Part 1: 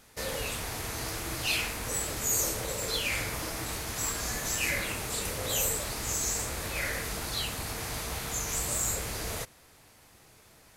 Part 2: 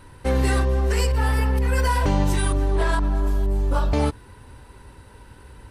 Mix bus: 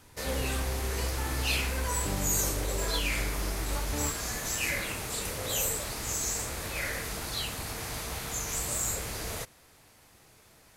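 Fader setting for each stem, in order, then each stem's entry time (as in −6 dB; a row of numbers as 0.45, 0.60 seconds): −1.0, −13.0 decibels; 0.00, 0.00 seconds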